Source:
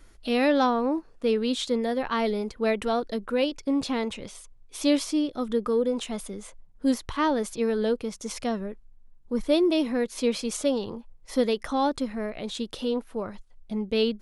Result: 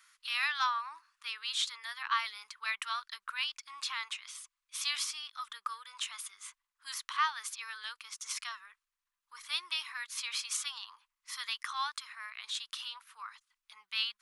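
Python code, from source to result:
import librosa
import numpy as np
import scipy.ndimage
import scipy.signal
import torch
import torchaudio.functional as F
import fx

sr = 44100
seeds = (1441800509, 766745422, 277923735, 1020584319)

y = scipy.signal.sosfilt(scipy.signal.ellip(4, 1.0, 50, 1100.0, 'highpass', fs=sr, output='sos'), x)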